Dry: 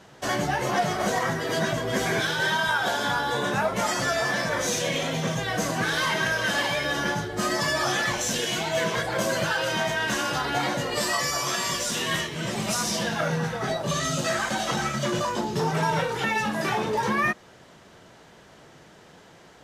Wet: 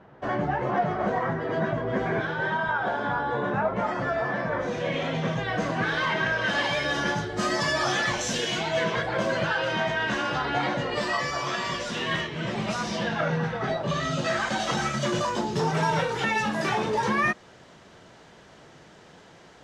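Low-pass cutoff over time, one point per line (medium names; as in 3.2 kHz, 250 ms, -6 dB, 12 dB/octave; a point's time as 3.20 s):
4.66 s 1.5 kHz
5.07 s 2.9 kHz
6.36 s 2.9 kHz
6.80 s 6.2 kHz
8.37 s 6.2 kHz
9.07 s 3.3 kHz
14.04 s 3.3 kHz
14.81 s 7.8 kHz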